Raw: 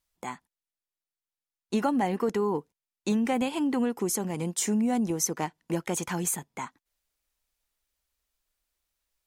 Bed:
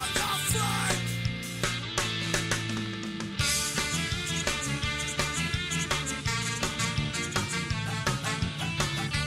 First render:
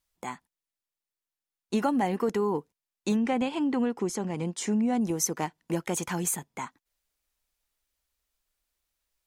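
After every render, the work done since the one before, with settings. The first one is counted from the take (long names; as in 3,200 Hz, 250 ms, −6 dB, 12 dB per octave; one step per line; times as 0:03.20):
0:03.16–0:05.01: high-frequency loss of the air 76 metres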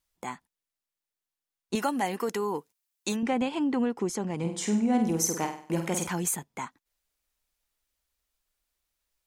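0:01.75–0:03.23: spectral tilt +2.5 dB per octave
0:04.39–0:06.07: flutter between parallel walls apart 8.3 metres, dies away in 0.48 s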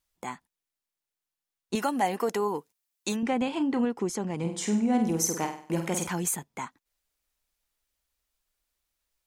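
0:01.91–0:02.47: parametric band 680 Hz +3.5 dB → +10.5 dB
0:03.44–0:03.85: double-tracking delay 33 ms −11 dB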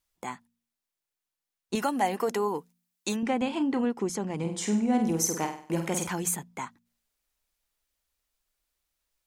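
hum removal 58.6 Hz, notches 4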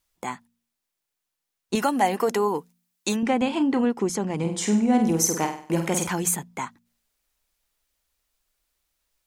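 level +5 dB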